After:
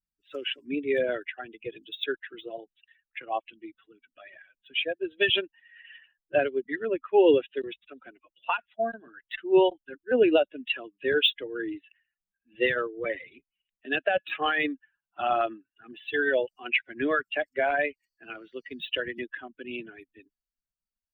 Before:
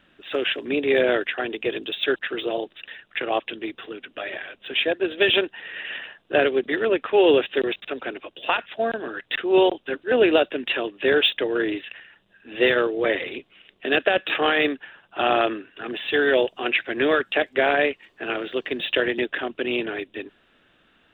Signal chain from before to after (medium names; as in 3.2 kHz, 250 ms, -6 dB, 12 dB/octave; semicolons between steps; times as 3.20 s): expander on every frequency bin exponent 2